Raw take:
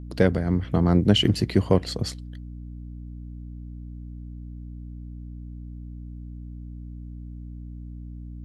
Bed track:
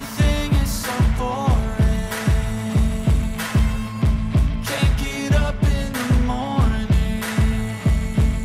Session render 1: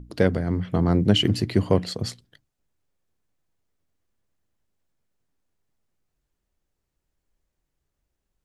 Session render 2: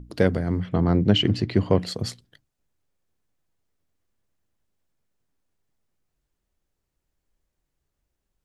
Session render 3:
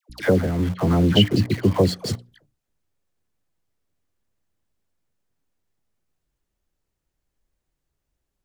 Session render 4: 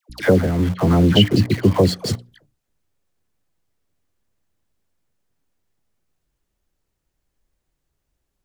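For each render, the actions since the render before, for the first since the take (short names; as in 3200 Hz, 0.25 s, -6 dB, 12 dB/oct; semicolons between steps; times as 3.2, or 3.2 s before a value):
notches 60/120/180/240/300 Hz
0.69–1.79 LPF 4800 Hz
dispersion lows, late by 98 ms, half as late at 1000 Hz; in parallel at -9.5 dB: bit-crush 5-bit
gain +3.5 dB; limiter -2 dBFS, peak gain reduction 1.5 dB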